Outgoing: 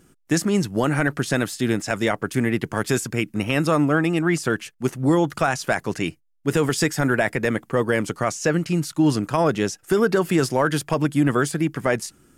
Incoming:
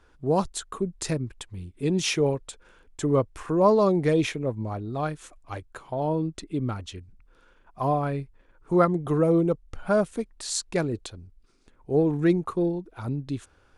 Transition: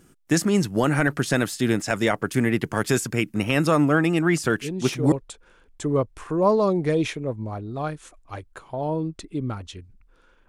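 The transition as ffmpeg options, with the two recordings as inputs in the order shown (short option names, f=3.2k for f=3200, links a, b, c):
-filter_complex "[1:a]asplit=2[a][b];[0:a]apad=whole_dur=10.48,atrim=end=10.48,atrim=end=5.122[c];[b]atrim=start=2.308:end=7.67[d];[a]atrim=start=1.63:end=2.31,asetpts=PTS-STARTPTS,volume=-6dB,afade=t=in:d=0.004:c=hsin,afade=t=out:st=0.676:d=0.004:c=hsin,adelay=4440[e];[c][d]acrossfade=d=0.004:c1=hsin:c2=hsin[f];[f][e]amix=inputs=2:normalize=0"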